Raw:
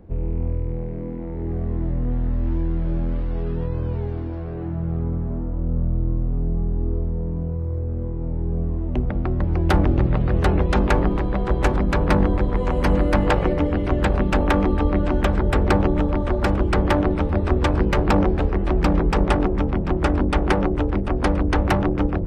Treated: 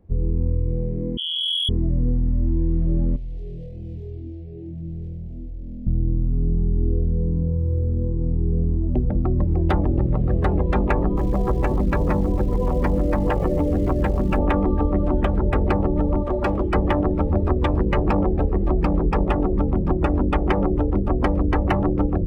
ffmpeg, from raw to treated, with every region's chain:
-filter_complex "[0:a]asettb=1/sr,asplit=3[a][b][c];[a]atrim=end=1.174[d];[b]atrim=start=1.17:end=1.69,asetpts=PTS-STARTPTS,afade=t=in:d=0.004:c=qsin,afade=t=out:st=0.516:d=0.004:c=qsin,lowpass=f=2.9k:t=q:w=0.5098,lowpass=f=2.9k:t=q:w=0.6013,lowpass=f=2.9k:t=q:w=0.9,lowpass=f=2.9k:t=q:w=2.563,afreqshift=-3400,asoftclip=type=hard:threshold=-23.5dB,asplit=2[e][f];[f]adelay=18,volume=-13dB[g];[e][g]amix=inputs=2:normalize=0,atrim=end_sample=22932[h];[c]atrim=start=1.686[i];[d][h]acrossfade=d=0.004:c1=hsin:c2=qsin[j];[j][i]acrossfade=d=0.004:c1=qsin:c2=hsin,asettb=1/sr,asplit=3[k][l][m];[k]atrim=end=3.164[n];[l]atrim=start=3.16:end=5.87,asetpts=PTS-STARTPTS,afade=t=in:d=0.004:c=qsin,afade=t=out:st=2.706:d=0.004:c=qsin,lowshelf=f=470:g=-8.5,aeval=exprs='0.0355*(abs(mod(val(0)/0.0355+3,4)-2)-1)':c=same,asuperstop=centerf=1200:order=4:qfactor=0.58[o];[m]atrim=start=5.866[p];[n][o]acrossfade=d=0.004:c1=hsin:c2=qsin[q];[q][p]acrossfade=d=0.004:c1=qsin:c2=hsin,asettb=1/sr,asplit=3[r][s][t];[r]atrim=end=11.164[u];[s]atrim=start=11.16:end=14.38,asetpts=PTS-STARTPTS,afade=t=in:d=0.004:c=qsin,afade=t=out:st=3.216:d=0.004:c=qsin,acompressor=threshold=-18dB:ratio=2.5:attack=3.2:release=140:knee=1:detection=peak,acrusher=bits=7:dc=4:mix=0:aa=0.000001[v];[t]atrim=start=14.376[w];[u][v]acrossfade=d=0.004:c1=hsin:c2=qsin[x];[x][w]acrossfade=d=0.004:c1=qsin:c2=hsin,asettb=1/sr,asplit=3[y][z][aa];[y]atrim=end=16.234[ab];[z]atrim=start=16.23:end=16.75,asetpts=PTS-STARTPTS,afade=t=in:d=0.004:c=qsin,afade=t=out:st=0.516:d=0.004:c=qsin,lowshelf=f=260:g=-8,volume=18dB,asoftclip=hard,volume=-18dB[ac];[aa]atrim=start=16.746[ad];[ab][ac]acrossfade=d=0.004:c1=hsin:c2=qsin[ae];[ae][ad]acrossfade=d=0.004:c1=qsin:c2=hsin,afftdn=nr=15:nf=-26,bandreject=f=1.5k:w=10,acompressor=threshold=-20dB:ratio=6,volume=4.5dB"

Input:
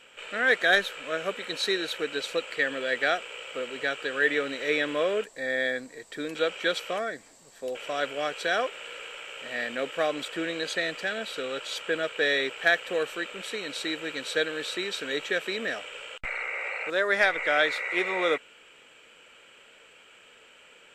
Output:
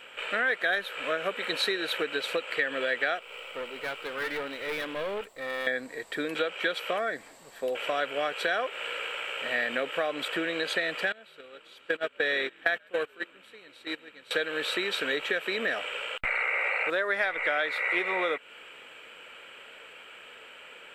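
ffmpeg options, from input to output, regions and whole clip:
-filter_complex "[0:a]asettb=1/sr,asplit=3[a][b][c];[a]atrim=end=3.194[d];[b]atrim=start=3.19:end=5.67,asetpts=PTS-STARTPTS,afade=t=in:d=0.004:c=qsin,afade=t=out:st=2.476:d=0.004:c=qsin,aeval=exprs='if(lt(val(0),0),0.447*val(0),val(0))':c=same,bandreject=f=1.7k:w=5.9,aeval=exprs='(tanh(44.7*val(0)+0.6)-tanh(0.6))/44.7':c=same[e];[c]atrim=start=5.666[f];[d][e]acrossfade=d=0.004:c1=hsin:c2=qsin[g];[g][f]acrossfade=d=0.004:c1=qsin:c2=hsin,asettb=1/sr,asplit=3[h][i][j];[h]atrim=end=11.124[k];[i]atrim=start=11.12:end=14.31,asetpts=PTS-STARTPTS,afade=t=in:d=0.004:c=qsin,afade=t=out:st=3.186:d=0.004:c=qsin,asplit=6[l][m][n][o][p][q];[m]adelay=136,afreqshift=-65,volume=-15dB[r];[n]adelay=272,afreqshift=-130,volume=-20.2dB[s];[o]adelay=408,afreqshift=-195,volume=-25.4dB[t];[p]adelay=544,afreqshift=-260,volume=-30.6dB[u];[q]adelay=680,afreqshift=-325,volume=-35.8dB[v];[l][r][s][t][u][v]amix=inputs=6:normalize=0,atrim=end_sample=140679,agate=range=-22dB:threshold=-29dB:ratio=16:release=100:detection=peak[w];[j]atrim=start=14.306[x];[k][w]acrossfade=d=0.004:c1=hsin:c2=qsin[y];[y][x]acrossfade=d=0.004:c1=qsin:c2=hsin,equalizer=f=6.4k:t=o:w=1.1:g=-13,acompressor=threshold=-32dB:ratio=6,lowshelf=f=400:g=-8,volume=8.5dB"

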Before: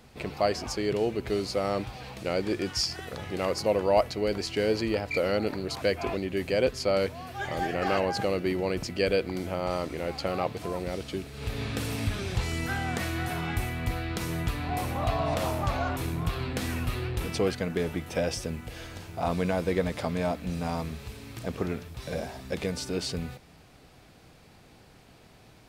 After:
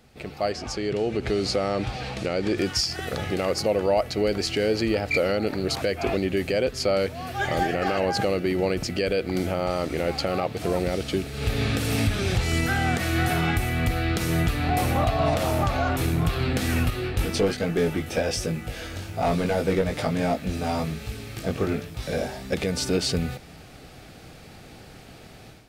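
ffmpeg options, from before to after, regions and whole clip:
-filter_complex "[0:a]asettb=1/sr,asplit=3[a][b][c];[a]atrim=end=0.524[d];[b]atrim=start=0.52:end=2.58,asetpts=PTS-STARTPTS,afade=t=in:d=0.004:c=qsin,afade=t=out:st=2.056:d=0.004:c=qsin,lowpass=8k,acompressor=threshold=-30dB:ratio=2.5:attack=3.2:release=140:knee=1:detection=peak[e];[c]atrim=start=2.576[f];[d][e]acrossfade=d=0.004:c1=hsin:c2=qsin[g];[g][f]acrossfade=d=0.004:c1=qsin:c2=hsin,asettb=1/sr,asplit=3[h][i][j];[h]atrim=end=16.904[k];[i]atrim=start=16.9:end=22.53,asetpts=PTS-STARTPTS,afade=t=in:d=0.004:c=qsin,afade=t=out:st=5.626:d=0.004:c=qsin,aeval=exprs='clip(val(0),-1,0.0794)':c=same,flanger=delay=18.5:depth=2.5:speed=1.2[l];[j]atrim=start=22.526[m];[k][l]acrossfade=d=0.004:c1=hsin:c2=qsin[n];[n][m]acrossfade=d=0.004:c1=qsin:c2=hsin,bandreject=f=1k:w=7,dynaudnorm=f=520:g=3:m=11.5dB,alimiter=limit=-11dB:level=0:latency=1:release=222,volume=-2dB"

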